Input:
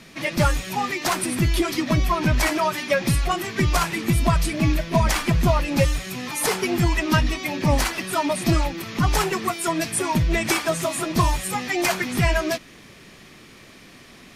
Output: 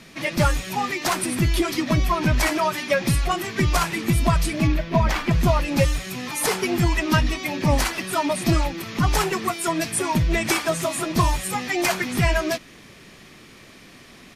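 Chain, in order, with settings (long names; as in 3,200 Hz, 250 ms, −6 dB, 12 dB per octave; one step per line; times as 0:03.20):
0:04.67–0:05.31: parametric band 9,700 Hz −14.5 dB 1.3 octaves
downsampling to 32,000 Hz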